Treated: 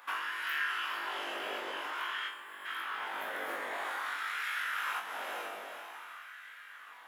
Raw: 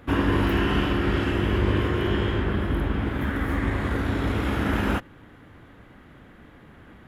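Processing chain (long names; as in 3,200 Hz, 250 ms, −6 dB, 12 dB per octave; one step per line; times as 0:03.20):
spectral tilt +2.5 dB per octave
mains-hum notches 50/100/150/200 Hz
feedback delay with all-pass diffusion 452 ms, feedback 42%, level −9 dB
downward compressor, threshold −32 dBFS, peak gain reduction 10 dB
auto-filter high-pass sine 0.5 Hz 580–1,600 Hz
gain on a spectral selection 0:02.28–0:02.65, 1,200–7,000 Hz −12 dB
flutter between parallel walls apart 3.5 metres, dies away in 0.29 s
level −5 dB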